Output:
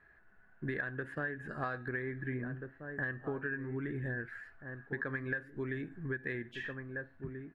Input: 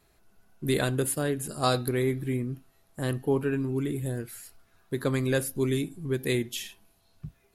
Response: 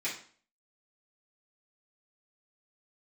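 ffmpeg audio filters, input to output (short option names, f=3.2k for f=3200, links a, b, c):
-filter_complex "[0:a]lowpass=f=1.7k:t=q:w=15,asplit=2[a][b];[b]adelay=1633,volume=-13dB,highshelf=f=4k:g=-36.7[c];[a][c]amix=inputs=2:normalize=0,acompressor=threshold=-29dB:ratio=10,volume=-5dB"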